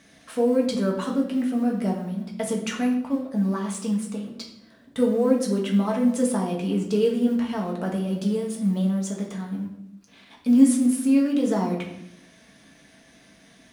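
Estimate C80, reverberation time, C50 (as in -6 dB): 9.5 dB, 0.85 s, 6.5 dB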